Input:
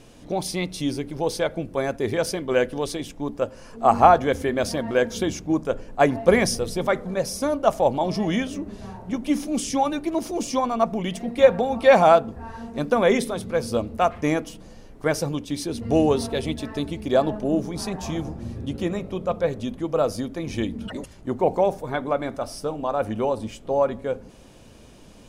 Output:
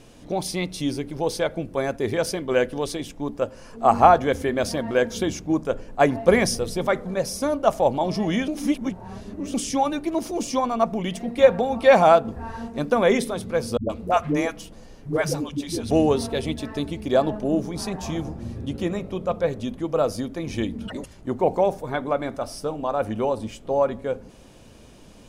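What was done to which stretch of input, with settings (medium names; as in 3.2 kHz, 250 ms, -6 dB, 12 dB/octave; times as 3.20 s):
8.48–9.54 s: reverse
12.25–12.68 s: gain +3 dB
13.77–15.91 s: phase dispersion highs, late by 125 ms, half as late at 300 Hz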